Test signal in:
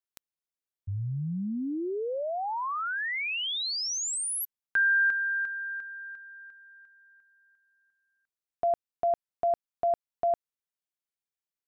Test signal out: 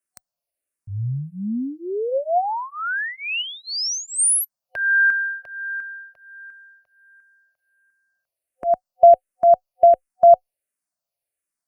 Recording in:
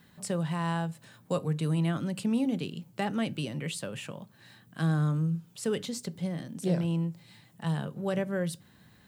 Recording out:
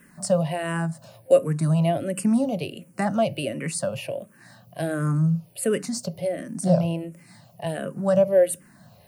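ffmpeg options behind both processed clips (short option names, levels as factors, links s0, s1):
-filter_complex "[0:a]superequalizer=8b=3.16:13b=0.447:16b=2.24,asplit=2[s0][s1];[s1]afreqshift=-1.4[s2];[s0][s2]amix=inputs=2:normalize=1,volume=2.51"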